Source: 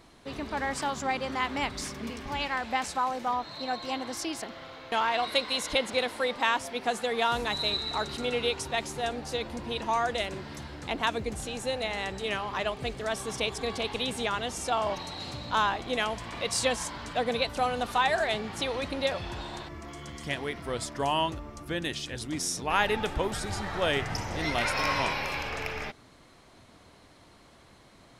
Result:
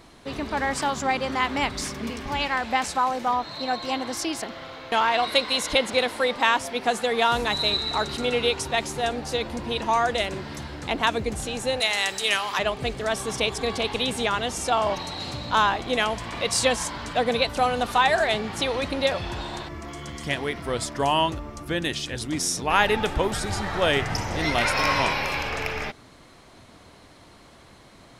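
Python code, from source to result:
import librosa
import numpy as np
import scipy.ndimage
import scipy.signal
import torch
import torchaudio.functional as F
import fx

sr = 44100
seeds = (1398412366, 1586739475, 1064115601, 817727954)

y = fx.tilt_eq(x, sr, slope=4.0, at=(11.8, 12.59))
y = y * librosa.db_to_amplitude(5.5)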